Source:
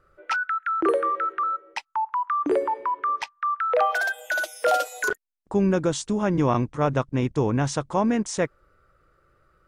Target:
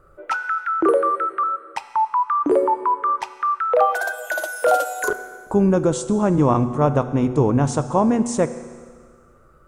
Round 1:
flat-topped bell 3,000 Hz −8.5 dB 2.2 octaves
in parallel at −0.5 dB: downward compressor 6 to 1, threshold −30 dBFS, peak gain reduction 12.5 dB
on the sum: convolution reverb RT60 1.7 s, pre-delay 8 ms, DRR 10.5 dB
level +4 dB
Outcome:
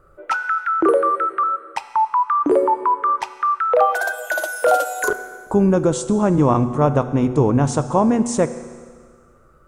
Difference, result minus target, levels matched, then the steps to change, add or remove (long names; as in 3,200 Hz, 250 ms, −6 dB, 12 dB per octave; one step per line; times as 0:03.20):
downward compressor: peak gain reduction −8.5 dB
change: downward compressor 6 to 1, threshold −40.5 dBFS, peak gain reduction 21 dB